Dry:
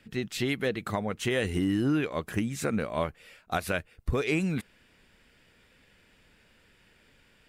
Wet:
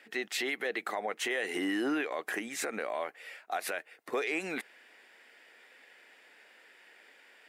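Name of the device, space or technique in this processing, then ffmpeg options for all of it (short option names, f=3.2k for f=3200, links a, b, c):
laptop speaker: -af "highpass=f=330:w=0.5412,highpass=f=330:w=1.3066,equalizer=f=760:t=o:w=0.49:g=7,equalizer=f=1.9k:t=o:w=0.59:g=8,alimiter=limit=-24dB:level=0:latency=1:release=72,volume=1dB"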